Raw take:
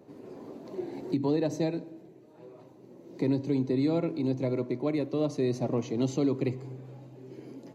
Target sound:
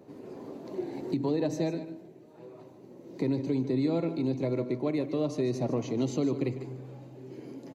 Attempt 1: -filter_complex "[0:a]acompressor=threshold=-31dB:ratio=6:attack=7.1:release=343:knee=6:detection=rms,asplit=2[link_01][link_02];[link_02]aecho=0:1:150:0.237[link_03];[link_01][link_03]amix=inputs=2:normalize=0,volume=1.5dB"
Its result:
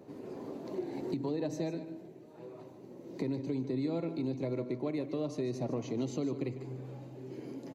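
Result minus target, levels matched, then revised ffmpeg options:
downward compressor: peak gain reduction +6.5 dB
-filter_complex "[0:a]acompressor=threshold=-23dB:ratio=6:attack=7.1:release=343:knee=6:detection=rms,asplit=2[link_01][link_02];[link_02]aecho=0:1:150:0.237[link_03];[link_01][link_03]amix=inputs=2:normalize=0,volume=1.5dB"

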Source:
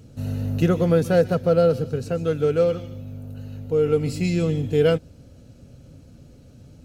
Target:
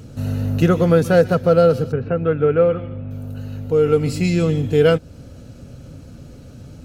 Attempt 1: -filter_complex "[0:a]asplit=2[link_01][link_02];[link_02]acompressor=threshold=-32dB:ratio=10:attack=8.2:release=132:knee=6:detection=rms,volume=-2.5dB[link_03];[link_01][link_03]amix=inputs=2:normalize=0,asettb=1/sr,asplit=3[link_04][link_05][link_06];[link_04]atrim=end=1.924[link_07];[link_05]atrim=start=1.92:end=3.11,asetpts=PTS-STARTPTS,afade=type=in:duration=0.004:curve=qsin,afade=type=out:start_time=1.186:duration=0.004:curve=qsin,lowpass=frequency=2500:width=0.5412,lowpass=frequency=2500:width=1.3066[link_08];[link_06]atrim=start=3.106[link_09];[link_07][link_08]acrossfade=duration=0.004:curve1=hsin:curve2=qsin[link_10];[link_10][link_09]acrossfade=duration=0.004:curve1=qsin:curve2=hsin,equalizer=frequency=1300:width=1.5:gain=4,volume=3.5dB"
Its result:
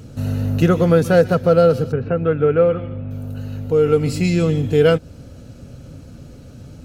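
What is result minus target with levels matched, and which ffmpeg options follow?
downward compressor: peak gain reduction −6.5 dB
-filter_complex "[0:a]asplit=2[link_01][link_02];[link_02]acompressor=threshold=-39dB:ratio=10:attack=8.2:release=132:knee=6:detection=rms,volume=-2.5dB[link_03];[link_01][link_03]amix=inputs=2:normalize=0,asettb=1/sr,asplit=3[link_04][link_05][link_06];[link_04]atrim=end=1.924[link_07];[link_05]atrim=start=1.92:end=3.11,asetpts=PTS-STARTPTS,afade=type=in:duration=0.004:curve=qsin,afade=type=out:start_time=1.186:duration=0.004:curve=qsin,lowpass=frequency=2500:width=0.5412,lowpass=frequency=2500:width=1.3066[link_08];[link_06]atrim=start=3.106[link_09];[link_07][link_08]acrossfade=duration=0.004:curve1=hsin:curve2=qsin[link_10];[link_10][link_09]acrossfade=duration=0.004:curve1=qsin:curve2=hsin,equalizer=frequency=1300:width=1.5:gain=4,volume=3.5dB"

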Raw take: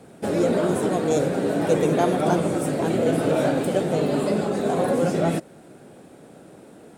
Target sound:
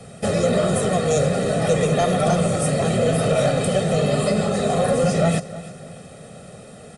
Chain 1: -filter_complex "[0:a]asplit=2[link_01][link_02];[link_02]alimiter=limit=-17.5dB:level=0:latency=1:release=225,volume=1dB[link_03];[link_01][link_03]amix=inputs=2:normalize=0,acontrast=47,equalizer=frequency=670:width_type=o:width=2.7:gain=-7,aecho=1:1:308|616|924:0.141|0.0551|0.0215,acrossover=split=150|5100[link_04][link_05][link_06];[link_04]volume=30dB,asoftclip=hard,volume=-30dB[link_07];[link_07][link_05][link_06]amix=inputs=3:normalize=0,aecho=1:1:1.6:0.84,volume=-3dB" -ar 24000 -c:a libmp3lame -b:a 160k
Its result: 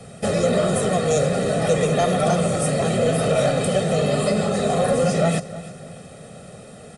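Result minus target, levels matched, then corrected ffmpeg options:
gain into a clipping stage and back: distortion +16 dB
-filter_complex "[0:a]asplit=2[link_01][link_02];[link_02]alimiter=limit=-17.5dB:level=0:latency=1:release=225,volume=1dB[link_03];[link_01][link_03]amix=inputs=2:normalize=0,acontrast=47,equalizer=frequency=670:width_type=o:width=2.7:gain=-7,aecho=1:1:308|616|924:0.141|0.0551|0.0215,acrossover=split=150|5100[link_04][link_05][link_06];[link_04]volume=21.5dB,asoftclip=hard,volume=-21.5dB[link_07];[link_07][link_05][link_06]amix=inputs=3:normalize=0,aecho=1:1:1.6:0.84,volume=-3dB" -ar 24000 -c:a libmp3lame -b:a 160k

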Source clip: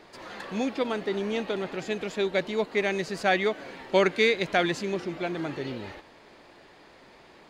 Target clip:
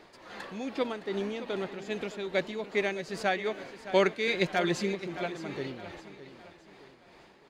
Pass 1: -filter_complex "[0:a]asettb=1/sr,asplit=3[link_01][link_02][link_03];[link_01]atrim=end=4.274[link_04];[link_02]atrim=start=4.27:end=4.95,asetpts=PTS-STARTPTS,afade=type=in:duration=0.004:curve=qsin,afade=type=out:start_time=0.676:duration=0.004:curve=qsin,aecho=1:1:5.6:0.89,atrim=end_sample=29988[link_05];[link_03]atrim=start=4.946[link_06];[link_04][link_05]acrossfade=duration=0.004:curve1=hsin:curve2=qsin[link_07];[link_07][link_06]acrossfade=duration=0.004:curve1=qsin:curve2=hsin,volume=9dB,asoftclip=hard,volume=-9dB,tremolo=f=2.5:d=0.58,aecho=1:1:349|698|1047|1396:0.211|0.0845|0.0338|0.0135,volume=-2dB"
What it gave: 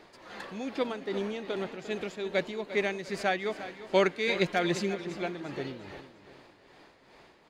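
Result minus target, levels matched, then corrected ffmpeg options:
echo 265 ms early
-filter_complex "[0:a]asettb=1/sr,asplit=3[link_01][link_02][link_03];[link_01]atrim=end=4.274[link_04];[link_02]atrim=start=4.27:end=4.95,asetpts=PTS-STARTPTS,afade=type=in:duration=0.004:curve=qsin,afade=type=out:start_time=0.676:duration=0.004:curve=qsin,aecho=1:1:5.6:0.89,atrim=end_sample=29988[link_05];[link_03]atrim=start=4.946[link_06];[link_04][link_05]acrossfade=duration=0.004:curve1=hsin:curve2=qsin[link_07];[link_07][link_06]acrossfade=duration=0.004:curve1=qsin:curve2=hsin,volume=9dB,asoftclip=hard,volume=-9dB,tremolo=f=2.5:d=0.58,aecho=1:1:614|1228|1842|2456:0.211|0.0845|0.0338|0.0135,volume=-2dB"

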